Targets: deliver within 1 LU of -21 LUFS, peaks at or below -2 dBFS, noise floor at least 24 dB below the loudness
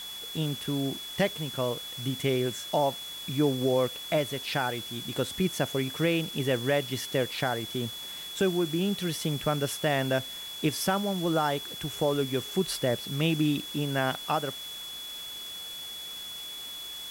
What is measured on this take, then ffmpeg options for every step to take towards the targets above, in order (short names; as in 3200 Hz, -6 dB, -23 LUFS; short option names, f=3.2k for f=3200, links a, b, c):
steady tone 3400 Hz; tone level -38 dBFS; noise floor -40 dBFS; noise floor target -54 dBFS; loudness -29.5 LUFS; peak -15.0 dBFS; loudness target -21.0 LUFS
-> -af "bandreject=f=3.4k:w=30"
-af "afftdn=nr=14:nf=-40"
-af "volume=8.5dB"